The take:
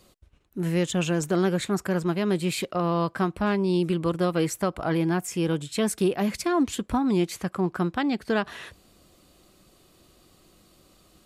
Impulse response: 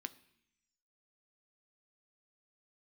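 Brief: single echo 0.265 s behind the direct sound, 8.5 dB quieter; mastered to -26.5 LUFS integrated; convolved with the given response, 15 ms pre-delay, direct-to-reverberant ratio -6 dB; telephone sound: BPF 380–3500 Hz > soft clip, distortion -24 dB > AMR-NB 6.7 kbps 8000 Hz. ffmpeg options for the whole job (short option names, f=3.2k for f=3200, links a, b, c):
-filter_complex "[0:a]aecho=1:1:265:0.376,asplit=2[a][b];[1:a]atrim=start_sample=2205,adelay=15[c];[b][c]afir=irnorm=-1:irlink=0,volume=9dB[d];[a][d]amix=inputs=2:normalize=0,highpass=380,lowpass=3.5k,asoftclip=threshold=-9.5dB,volume=-1.5dB" -ar 8000 -c:a libopencore_amrnb -b:a 6700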